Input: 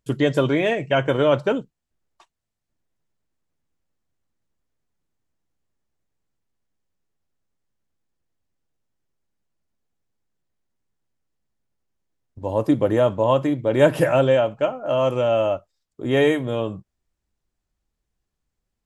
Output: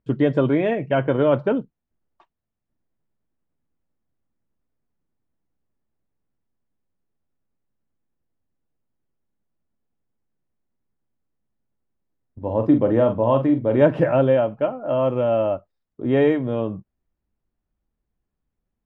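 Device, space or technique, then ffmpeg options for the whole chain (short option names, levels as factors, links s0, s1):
phone in a pocket: -filter_complex "[0:a]asettb=1/sr,asplit=3[s0][s1][s2];[s0]atrim=end=12.424[s3];[s1]atrim=start=12.42:end=13.82,asetpts=PTS-STARTPTS,afade=t=in:d=0.004:c=qsin,afade=t=out:st=1.396:d=0.004:c=qsin,asplit=2[s4][s5];[s5]adelay=44,volume=0.422[s6];[s4][s6]amix=inputs=2:normalize=0,atrim=end_sample=61740[s7];[s2]atrim=start=13.816[s8];[s3][s7]acrossfade=d=0.004:c1=hsin:c2=qsin[s9];[s9][s8]acrossfade=d=0.004:c1=qsin:c2=hsin,lowpass=3600,equalizer=f=230:t=o:w=0.77:g=4,highshelf=f=2400:g=-12"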